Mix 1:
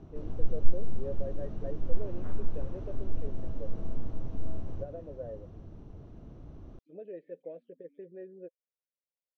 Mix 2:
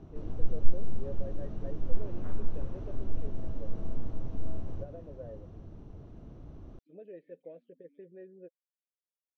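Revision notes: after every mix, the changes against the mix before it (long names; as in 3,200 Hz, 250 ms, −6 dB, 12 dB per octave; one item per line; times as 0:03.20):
first voice: add parametric band 560 Hz −4.5 dB 2.6 octaves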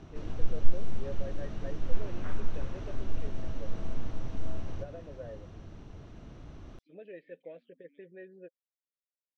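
master: add drawn EQ curve 440 Hz 0 dB, 1,000 Hz +5 dB, 1,900 Hz +12 dB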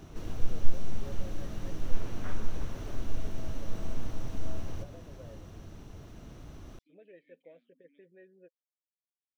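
first voice −8.0 dB
background: remove high-frequency loss of the air 110 metres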